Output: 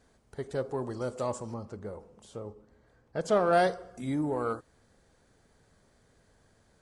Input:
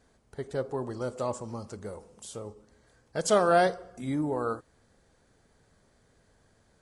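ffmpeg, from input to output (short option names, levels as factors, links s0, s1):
-filter_complex "[0:a]asettb=1/sr,asplit=3[s0][s1][s2];[s0]atrim=end=1.544[s3];[s1]atrim=start=1.54:end=3.53,asetpts=PTS-STARTPTS,afade=t=in:d=0.004:c=qsin,afade=t=out:st=1.986:d=0.004:c=qsin,lowpass=f=1600:p=1[s4];[s2]atrim=start=3.526[s5];[s3][s4]acrossfade=d=0.004:c1=hsin:c2=qsin[s6];[s6][s5]acrossfade=d=0.004:c1=qsin:c2=hsin,asplit=2[s7][s8];[s8]asoftclip=type=tanh:threshold=0.0398,volume=0.335[s9];[s7][s9]amix=inputs=2:normalize=0,volume=0.75"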